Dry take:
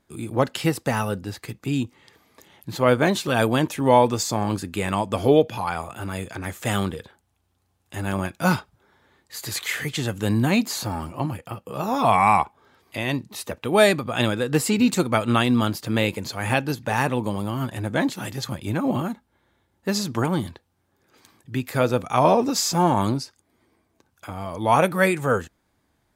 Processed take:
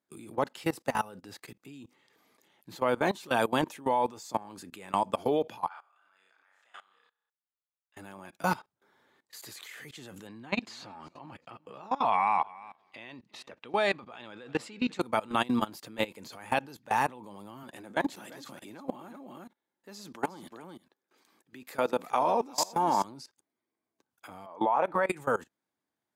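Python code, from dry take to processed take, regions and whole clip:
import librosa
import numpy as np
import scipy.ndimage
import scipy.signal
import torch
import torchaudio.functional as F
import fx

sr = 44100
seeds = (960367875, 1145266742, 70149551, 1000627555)

y = fx.chain(x, sr, fx.ladder_bandpass(hz=1900.0, resonance_pct=25),
    fx.peak_eq(hz=2100.0, db=-6.5, octaves=1.0),
    fx.room_flutter(wall_m=5.4, rt60_s=0.53), at=(5.68, 7.97))
y = fx.chain(y, sr, fx.lowpass(hz=3600.0, slope=12),
    fx.tilt_shelf(db=-3.5, hz=1300.0),
    fx.echo_feedback(ms=352, feedback_pct=18, wet_db=-23.0), at=(10.27, 15.01))
y = fx.chain(y, sr, fx.highpass(hz=180.0, slope=12),
    fx.echo_single(ms=358, db=-11.5), at=(17.63, 23.04))
y = fx.chain(y, sr, fx.bandpass_q(hz=780.0, q=0.76),
    fx.pre_swell(db_per_s=58.0), at=(24.46, 25.09))
y = scipy.signal.sosfilt(scipy.signal.butter(2, 200.0, 'highpass', fs=sr, output='sos'), y)
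y = fx.dynamic_eq(y, sr, hz=900.0, q=2.5, threshold_db=-37.0, ratio=4.0, max_db=7)
y = fx.level_steps(y, sr, step_db=21)
y = y * 10.0 ** (-4.5 / 20.0)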